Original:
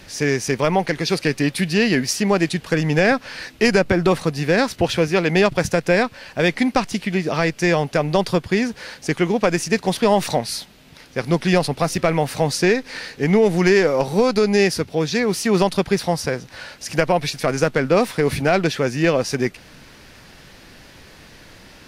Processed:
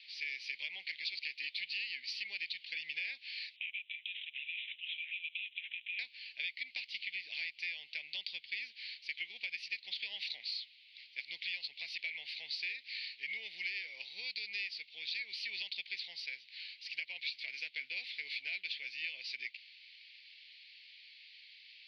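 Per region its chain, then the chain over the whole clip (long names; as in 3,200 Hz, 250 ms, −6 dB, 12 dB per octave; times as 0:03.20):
0:03.56–0:05.99: linear-phase brick-wall high-pass 2,300 Hz + downward compressor 4 to 1, threshold −30 dBFS + bad sample-rate conversion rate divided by 6×, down none, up filtered
whole clip: elliptic band-pass filter 2,200–4,500 Hz, stop band 40 dB; downward compressor, threshold −31 dBFS; level −5 dB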